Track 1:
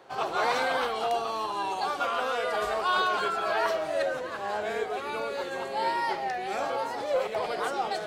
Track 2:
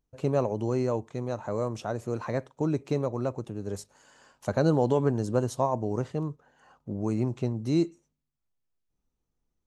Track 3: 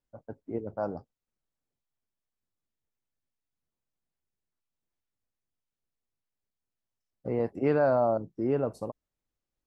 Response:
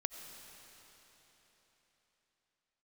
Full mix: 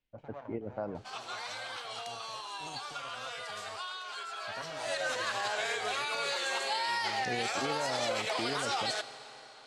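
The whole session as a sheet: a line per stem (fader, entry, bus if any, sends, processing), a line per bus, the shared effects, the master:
0:04.68 −13.5 dB → 0:05.02 −2 dB, 0.95 s, no bus, send −5 dB, meter weighting curve ITU-R 468; downward compressor 10 to 1, threshold −27 dBFS, peak gain reduction 10 dB
−11.5 dB, 0.00 s, bus A, no send, lower of the sound and its delayed copy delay 1.3 ms; high-pass filter 190 Hz 6 dB per octave; flanger 1.2 Hz, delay 5.5 ms, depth 3.4 ms, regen +64%
−1.0 dB, 0.00 s, bus A, send −20.5 dB, high shelf with overshoot 1,800 Hz +10.5 dB, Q 1.5
bus A: 0.0 dB, low-pass filter 2,800 Hz 12 dB per octave; downward compressor, threshold −33 dBFS, peak gain reduction 11.5 dB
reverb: on, RT60 4.2 s, pre-delay 50 ms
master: brickwall limiter −23 dBFS, peak gain reduction 8.5 dB

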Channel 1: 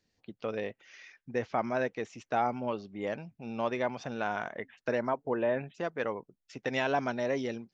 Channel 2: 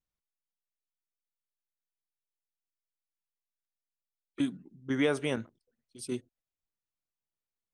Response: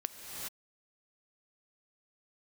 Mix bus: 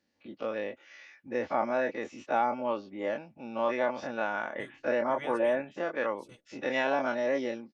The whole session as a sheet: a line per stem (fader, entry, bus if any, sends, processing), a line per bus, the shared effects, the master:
−0.5 dB, 0.00 s, no send, every bin's largest magnitude spread in time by 60 ms; high-pass filter 290 Hz 6 dB per octave
−6.0 dB, 0.20 s, no send, gate on every frequency bin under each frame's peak −10 dB weak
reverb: not used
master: high-shelf EQ 3,300 Hz −9.5 dB; comb filter 3.5 ms, depth 45%

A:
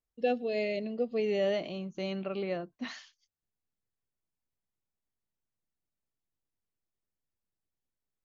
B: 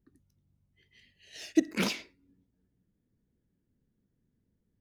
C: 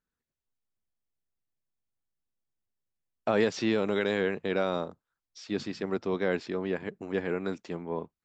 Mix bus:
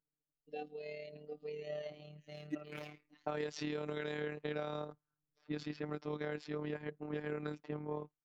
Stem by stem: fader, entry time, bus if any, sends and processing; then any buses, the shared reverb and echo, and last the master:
−9.5 dB, 0.30 s, no send, hum removal 203.1 Hz, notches 8; automatic ducking −19 dB, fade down 0.30 s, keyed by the third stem
−13.5 dB, 0.95 s, no send, high shelf with overshoot 3,300 Hz −8.5 dB, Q 1.5
+0.5 dB, 0.00 s, no send, low-pass that shuts in the quiet parts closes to 720 Hz, open at −25 dBFS; downward compressor 6 to 1, threshold −31 dBFS, peak gain reduction 11 dB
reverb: not used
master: amplitude modulation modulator 37 Hz, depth 40%; phases set to zero 150 Hz

